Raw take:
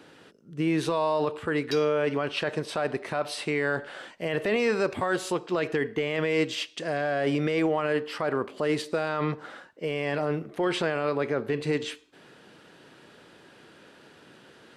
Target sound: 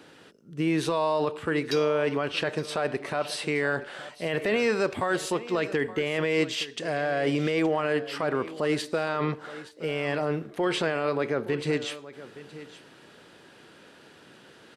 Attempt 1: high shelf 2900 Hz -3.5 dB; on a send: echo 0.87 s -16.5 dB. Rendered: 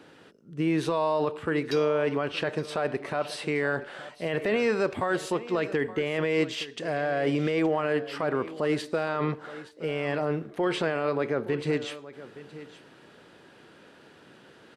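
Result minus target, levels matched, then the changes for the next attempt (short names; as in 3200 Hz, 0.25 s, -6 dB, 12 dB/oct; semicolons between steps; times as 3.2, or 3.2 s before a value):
8000 Hz band -4.5 dB
change: high shelf 2900 Hz +2.5 dB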